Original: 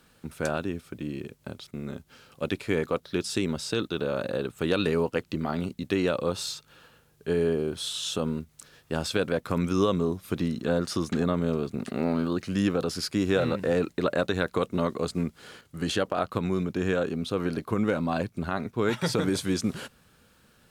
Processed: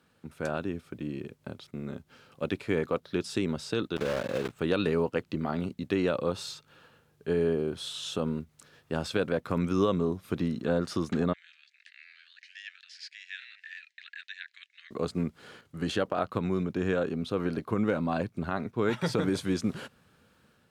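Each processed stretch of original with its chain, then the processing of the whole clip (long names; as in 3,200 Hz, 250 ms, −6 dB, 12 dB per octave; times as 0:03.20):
0:03.96–0:04.59: one scale factor per block 3 bits + high-shelf EQ 8,600 Hz −9.5 dB
0:11.33–0:14.91: Chebyshev high-pass filter 1,700 Hz, order 6 + high-frequency loss of the air 130 metres
whole clip: automatic gain control gain up to 4 dB; high-pass filter 70 Hz; high-shelf EQ 4,500 Hz −8.5 dB; level −5.5 dB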